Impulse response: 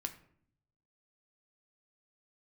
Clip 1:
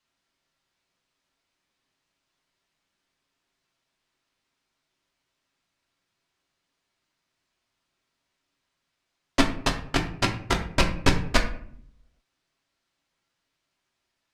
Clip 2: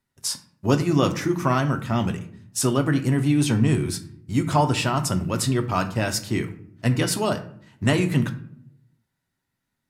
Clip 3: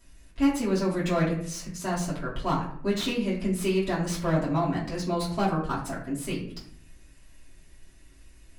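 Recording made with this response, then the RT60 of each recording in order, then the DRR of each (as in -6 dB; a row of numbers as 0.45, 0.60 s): 2; 0.60, 0.60, 0.60 s; 1.0, 5.5, -8.0 dB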